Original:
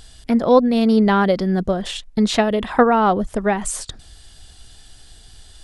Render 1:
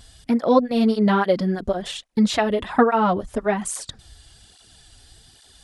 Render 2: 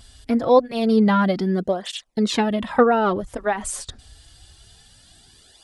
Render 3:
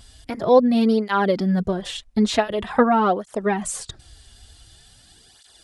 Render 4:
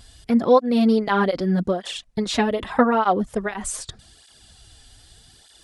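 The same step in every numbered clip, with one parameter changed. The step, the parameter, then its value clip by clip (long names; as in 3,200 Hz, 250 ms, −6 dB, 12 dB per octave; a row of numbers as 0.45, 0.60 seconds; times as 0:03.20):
through-zero flanger with one copy inverted, nulls at: 1.2, 0.26, 0.46, 0.82 Hertz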